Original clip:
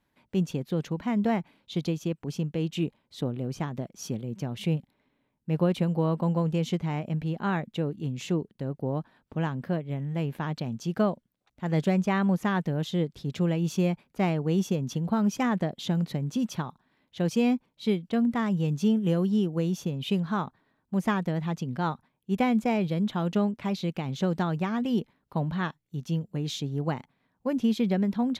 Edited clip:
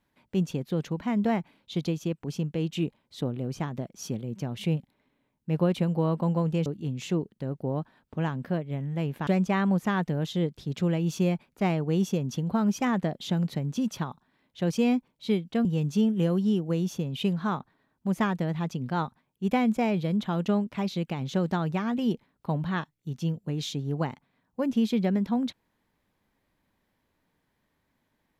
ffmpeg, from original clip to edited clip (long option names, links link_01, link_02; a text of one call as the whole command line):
ffmpeg -i in.wav -filter_complex "[0:a]asplit=4[link_01][link_02][link_03][link_04];[link_01]atrim=end=6.662[link_05];[link_02]atrim=start=7.848:end=10.462[link_06];[link_03]atrim=start=11.848:end=18.232[link_07];[link_04]atrim=start=18.518[link_08];[link_05][link_06]acrossfade=duration=0.004:curve1=hsin:curve2=hsin[link_09];[link_09][link_07]acrossfade=duration=0.004:curve1=hsin:curve2=hsin[link_10];[link_10][link_08]acrossfade=duration=0.004:curve1=hsin:curve2=hsin" out.wav